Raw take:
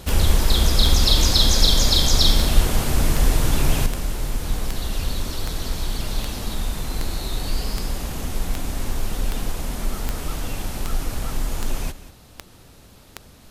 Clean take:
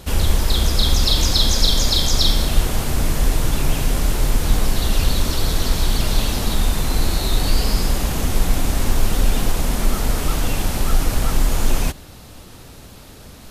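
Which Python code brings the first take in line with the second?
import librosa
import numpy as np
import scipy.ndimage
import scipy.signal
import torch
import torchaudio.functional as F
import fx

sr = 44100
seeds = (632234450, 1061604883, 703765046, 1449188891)

y = fx.fix_declick_ar(x, sr, threshold=10.0)
y = fx.fix_echo_inverse(y, sr, delay_ms=189, level_db=-15.5)
y = fx.fix_level(y, sr, at_s=3.86, step_db=7.5)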